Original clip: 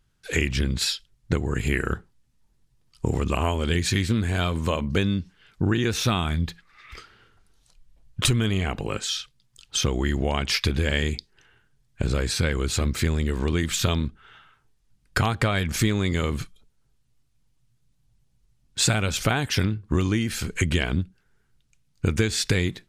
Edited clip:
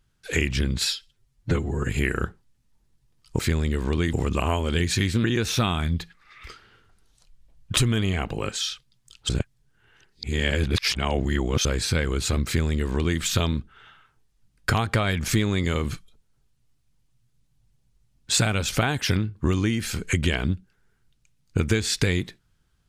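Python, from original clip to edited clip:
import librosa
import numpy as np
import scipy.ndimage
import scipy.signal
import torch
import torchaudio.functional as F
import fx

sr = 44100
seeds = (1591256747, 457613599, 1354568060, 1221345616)

y = fx.edit(x, sr, fx.stretch_span(start_s=0.95, length_s=0.62, factor=1.5),
    fx.cut(start_s=4.19, length_s=1.53),
    fx.reverse_span(start_s=9.77, length_s=2.36),
    fx.duplicate(start_s=12.94, length_s=0.74, to_s=3.08), tone=tone)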